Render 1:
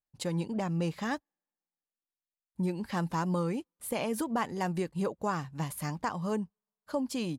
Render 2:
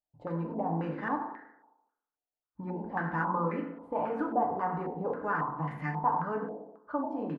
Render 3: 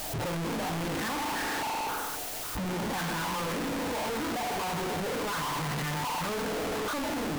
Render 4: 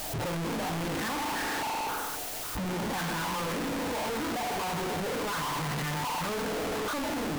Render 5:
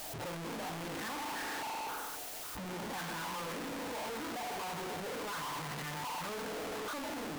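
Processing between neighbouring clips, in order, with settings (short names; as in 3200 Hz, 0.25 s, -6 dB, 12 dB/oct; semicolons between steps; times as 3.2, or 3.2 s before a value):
frequency-shifting echo 90 ms, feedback 37%, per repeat +55 Hz, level -13 dB; FDN reverb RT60 0.9 s, low-frequency decay 0.85×, high-frequency decay 0.4×, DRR -0.5 dB; stepped low-pass 3.7 Hz 700–1900 Hz; gain -6.5 dB
infinite clipping; gain +2 dB
nothing audible
low shelf 190 Hz -7 dB; gain -7 dB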